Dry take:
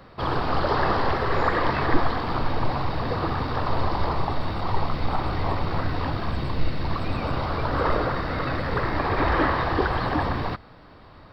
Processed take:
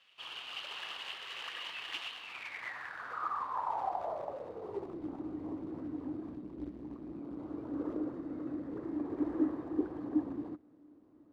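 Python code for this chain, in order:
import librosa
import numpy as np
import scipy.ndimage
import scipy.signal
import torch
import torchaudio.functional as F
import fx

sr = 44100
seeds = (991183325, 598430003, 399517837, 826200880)

y = fx.ring_mod(x, sr, carrier_hz=61.0, at=(6.36, 7.4))
y = fx.quant_companded(y, sr, bits=4)
y = fx.filter_sweep_bandpass(y, sr, from_hz=2900.0, to_hz=300.0, start_s=2.16, end_s=5.12, q=7.9)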